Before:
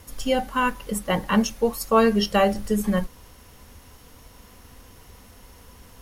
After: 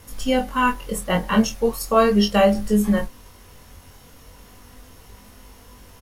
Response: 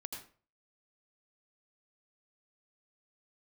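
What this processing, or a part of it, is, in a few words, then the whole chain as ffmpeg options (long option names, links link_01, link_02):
double-tracked vocal: -filter_complex "[0:a]asplit=2[link_01][link_02];[link_02]adelay=24,volume=-11dB[link_03];[link_01][link_03]amix=inputs=2:normalize=0,flanger=delay=19:depth=3.7:speed=0.38,volume=4.5dB"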